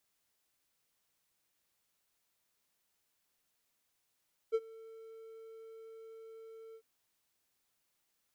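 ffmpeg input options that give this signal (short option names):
-f lavfi -i "aevalsrc='0.0668*(1-4*abs(mod(448*t+0.25,1)-0.5))':d=2.298:s=44100,afade=t=in:d=0.028,afade=t=out:st=0.028:d=0.046:silence=0.0668,afade=t=out:st=2.23:d=0.068"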